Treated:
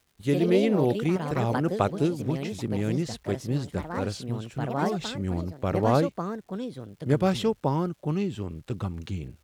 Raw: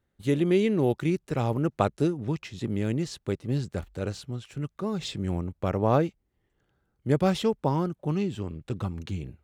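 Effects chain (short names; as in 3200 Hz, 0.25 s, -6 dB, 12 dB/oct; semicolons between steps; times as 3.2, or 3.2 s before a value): echoes that change speed 0.113 s, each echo +4 st, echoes 2, each echo -6 dB; crackle 440/s -53 dBFS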